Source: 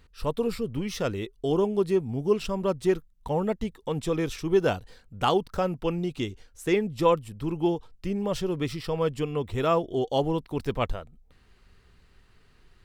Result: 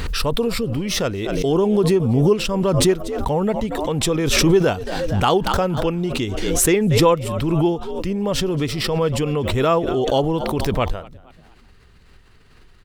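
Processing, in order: frequency-shifting echo 233 ms, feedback 44%, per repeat +69 Hz, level -22.5 dB; swell ahead of each attack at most 26 dB/s; trim +5.5 dB

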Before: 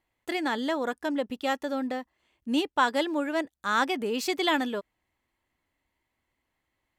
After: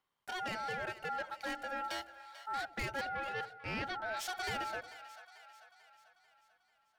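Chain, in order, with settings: 1.84–2.48 s: resonant high shelf 1.8 kHz +14 dB, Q 1.5; saturation -28.5 dBFS, distortion -8 dB; ring modulator 1.1 kHz; 3.01–4.17 s: Savitzky-Golay filter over 15 samples; two-band feedback delay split 640 Hz, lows 84 ms, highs 442 ms, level -14 dB; trim -3.5 dB

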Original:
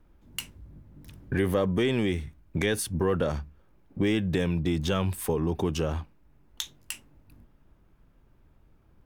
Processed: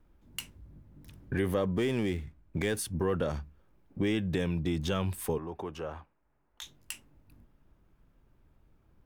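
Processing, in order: 1.66–2.77 s: median filter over 9 samples; 5.38–6.62 s: three-band isolator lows -12 dB, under 460 Hz, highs -13 dB, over 2.2 kHz; trim -4 dB

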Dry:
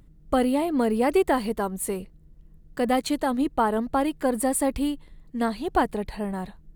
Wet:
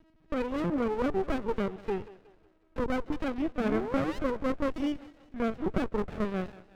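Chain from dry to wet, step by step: block-companded coder 5-bit; resonant low shelf 260 Hz -9.5 dB, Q 1.5; compression, threshold -23 dBFS, peak gain reduction 9 dB; peak limiter -20.5 dBFS, peak gain reduction 7.5 dB; LPC vocoder at 8 kHz pitch kept; painted sound rise, 3.60–4.19 s, 200–1100 Hz -33 dBFS; LFO low-pass saw down 0.64 Hz 770–2900 Hz; on a send: thinning echo 183 ms, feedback 55%, high-pass 400 Hz, level -16 dB; on the sum: sliding maximum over 33 samples

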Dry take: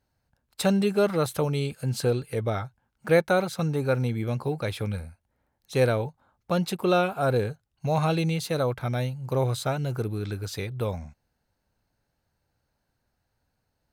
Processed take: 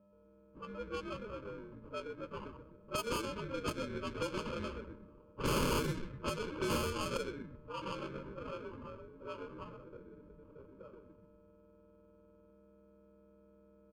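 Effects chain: frequency axis rescaled in octaves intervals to 122%; Doppler pass-by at 5.17 s, 20 m/s, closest 1.4 m; high-pass 410 Hz 12 dB/octave; in parallel at +2 dB: compression 8:1, threshold -59 dBFS, peak gain reduction 24 dB; on the sum: whistle 12 kHz -74 dBFS; on a send: frequency-shifting echo 126 ms, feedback 52%, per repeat -140 Hz, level -5.5 dB; on the sum: sample-rate reducer 1.9 kHz, jitter 0%; integer overflow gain 41.5 dB; level-controlled noise filter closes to 600 Hz, open at -45.5 dBFS; Butterworth band-stop 730 Hz, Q 2.1; trim +16 dB

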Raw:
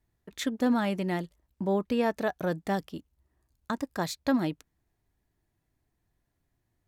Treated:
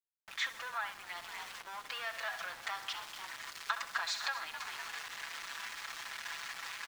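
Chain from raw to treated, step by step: jump at every zero crossing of -40 dBFS; comb 6 ms, depth 91%; frequency-shifting echo 250 ms, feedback 35%, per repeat +73 Hz, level -15 dB; power-law waveshaper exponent 0.7; gate with hold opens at -28 dBFS; treble shelf 2.7 kHz -11 dB, from 1.07 s +2 dB; feedback delay 65 ms, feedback 59%, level -11 dB; compression 6:1, threshold -27 dBFS, peak gain reduction 10.5 dB; high-pass 1.1 kHz 24 dB/octave; distance through air 130 m; small samples zeroed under -49.5 dBFS; trim +2 dB

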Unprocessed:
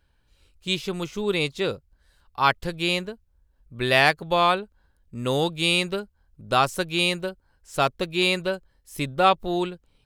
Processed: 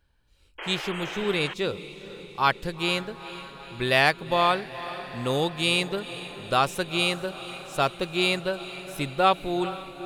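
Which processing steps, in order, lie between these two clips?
echo that smears into a reverb 458 ms, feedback 64%, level -14 dB; painted sound noise, 0.58–1.54 s, 290–3300 Hz -34 dBFS; trim -2 dB

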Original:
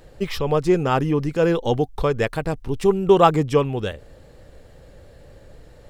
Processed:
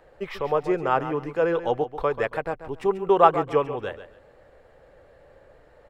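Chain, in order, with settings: three-band isolator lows -14 dB, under 430 Hz, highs -16 dB, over 2.3 kHz; feedback delay 138 ms, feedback 23%, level -12 dB

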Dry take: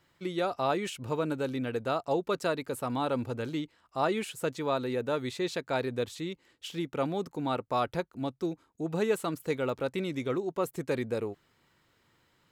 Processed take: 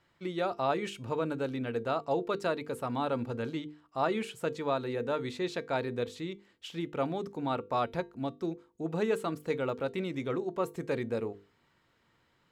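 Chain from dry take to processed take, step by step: low-pass 4 kHz 6 dB/octave; hum notches 50/100/150/200/250/300/350/400/450/500 Hz; feedback comb 230 Hz, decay 0.23 s, harmonics all, mix 40%; trim +3 dB

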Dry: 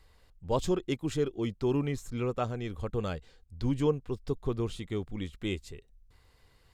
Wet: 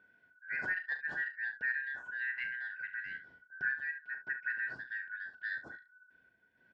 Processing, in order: four frequency bands reordered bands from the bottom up 4123; high-pass 79 Hz; random-step tremolo 3.5 Hz; Bessel low-pass 820 Hz, order 2; early reflections 38 ms -9.5 dB, 70 ms -13 dB; trim +4.5 dB

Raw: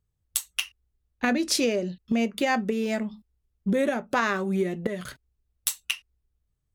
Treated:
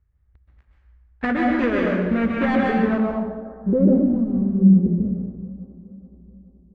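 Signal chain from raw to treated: dead-time distortion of 0.23 ms; peaking EQ 62 Hz +14 dB 0.81 oct; plate-style reverb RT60 1.2 s, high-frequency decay 0.85×, pre-delay 115 ms, DRR -2 dB; low-pass sweep 1.8 kHz -> 210 Hz, 2.80–4.30 s; bass shelf 180 Hz +4.5 dB; bucket-brigade echo 426 ms, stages 4096, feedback 53%, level -19 dB

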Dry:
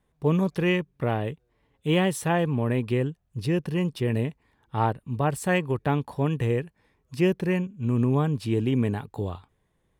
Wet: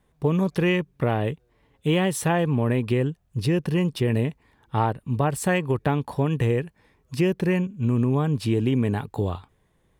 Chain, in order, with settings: compression 4:1, threshold -24 dBFS, peak gain reduction 6.5 dB; trim +5.5 dB

